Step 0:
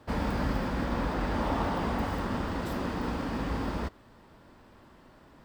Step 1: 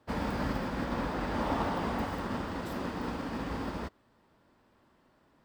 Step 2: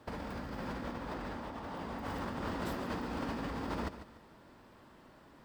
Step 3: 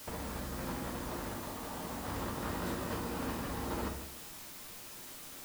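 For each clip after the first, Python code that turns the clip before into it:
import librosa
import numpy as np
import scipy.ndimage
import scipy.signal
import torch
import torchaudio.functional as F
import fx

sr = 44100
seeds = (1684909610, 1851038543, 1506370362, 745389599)

y1 = fx.low_shelf(x, sr, hz=72.0, db=-8.5)
y1 = fx.upward_expand(y1, sr, threshold_db=-48.0, expansion=1.5)
y2 = fx.over_compress(y1, sr, threshold_db=-41.0, ratio=-1.0)
y2 = fx.echo_feedback(y2, sr, ms=146, feedback_pct=34, wet_db=-12.0)
y2 = y2 * librosa.db_to_amplitude(1.0)
y3 = fx.quant_dither(y2, sr, seeds[0], bits=8, dither='triangular')
y3 = fx.room_shoebox(y3, sr, seeds[1], volume_m3=56.0, walls='mixed', distance_m=0.47)
y3 = y3 * librosa.db_to_amplitude(-2.0)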